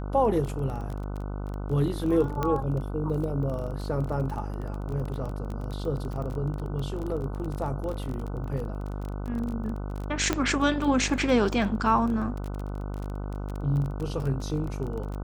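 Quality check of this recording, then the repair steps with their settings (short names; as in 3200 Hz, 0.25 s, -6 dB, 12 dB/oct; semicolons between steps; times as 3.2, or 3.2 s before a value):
buzz 50 Hz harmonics 30 -33 dBFS
crackle 23/s -32 dBFS
2.43 pop -15 dBFS
10.33 pop -10 dBFS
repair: de-click; de-hum 50 Hz, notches 30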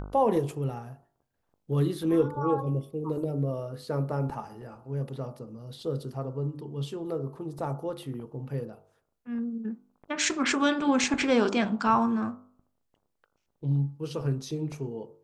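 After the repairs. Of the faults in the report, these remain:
none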